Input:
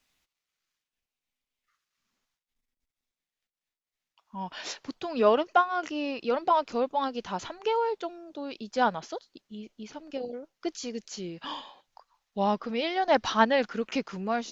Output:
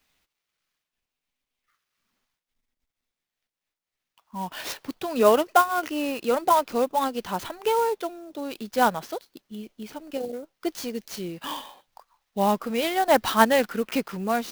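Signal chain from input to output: clock jitter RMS 0.026 ms; gain +4 dB

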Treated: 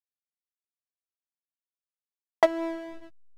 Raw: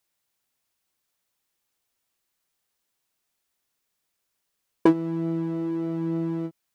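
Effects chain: ending faded out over 1.60 s; speed mistake 7.5 ips tape played at 15 ips; backlash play -25.5 dBFS

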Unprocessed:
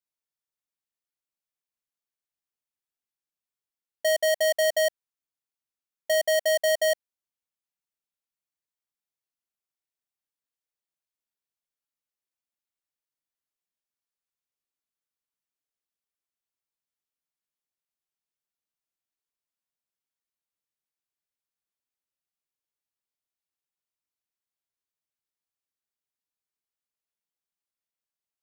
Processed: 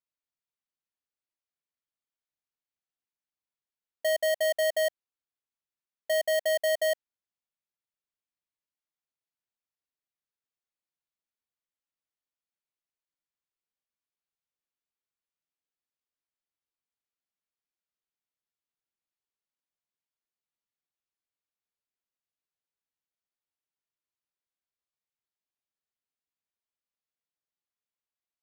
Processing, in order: careless resampling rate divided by 4×, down filtered, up hold; gain -3 dB

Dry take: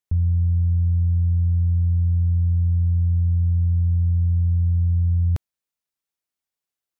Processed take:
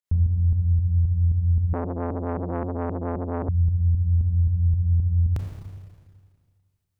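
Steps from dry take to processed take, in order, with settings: pump 114 bpm, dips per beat 2, -14 dB, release 0.134 s; Schroeder reverb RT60 1.9 s, combs from 28 ms, DRR 1 dB; 1.73–3.49 core saturation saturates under 600 Hz

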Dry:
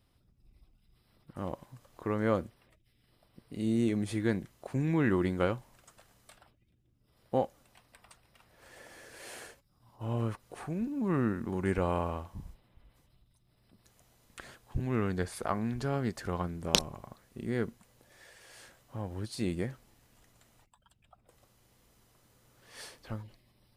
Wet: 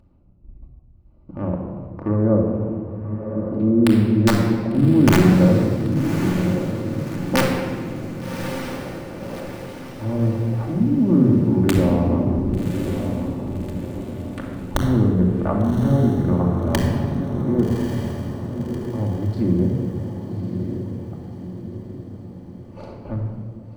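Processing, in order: Wiener smoothing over 25 samples; gate -58 dBFS, range -30 dB; LPF 1300 Hz 6 dB/oct; treble ducked by the level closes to 690 Hz, closed at -28 dBFS; dynamic EQ 170 Hz, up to +4 dB, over -41 dBFS, Q 0.76; in parallel at +2.5 dB: upward compressor, threshold -32 dBFS; on the sum: wrapped overs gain 10 dB; on a send: diffused feedback echo 1.147 s, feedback 50%, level -7 dB; on the sum: shoebox room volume 2600 m³, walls mixed, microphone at 2.5 m

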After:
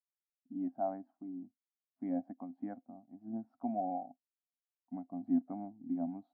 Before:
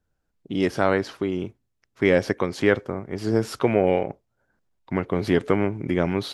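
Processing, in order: double band-pass 430 Hz, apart 1.5 oct; spectral expander 1.5:1; gain -4 dB

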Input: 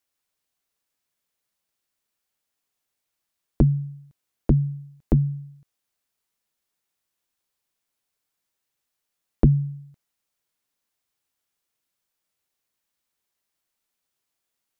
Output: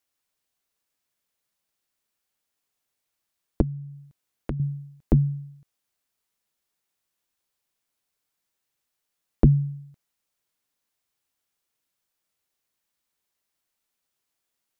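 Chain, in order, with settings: 3.61–4.6 compressor 3:1, threshold -32 dBFS, peak gain reduction 13.5 dB

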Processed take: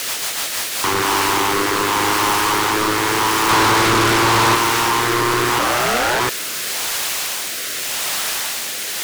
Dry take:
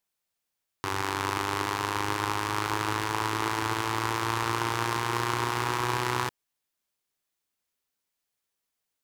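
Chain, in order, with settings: 3.49–4.55 sample leveller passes 5; in parallel at -4.5 dB: requantised 6-bit, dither triangular; on the sum: rotary speaker horn 6.7 Hz, later 0.85 Hz, at 0.32; 5.58–6.19 ring modulator 160 Hz -> 570 Hz; overdrive pedal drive 37 dB, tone 7900 Hz, clips at -4 dBFS; gain -4.5 dB

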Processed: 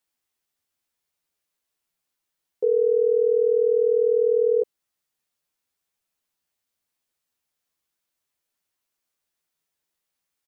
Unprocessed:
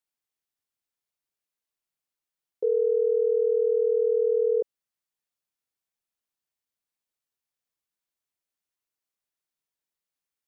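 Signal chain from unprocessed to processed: in parallel at 0 dB: limiter -28.5 dBFS, peak gain reduction 11.5 dB; on the sum: doubler 12 ms -4.5 dB

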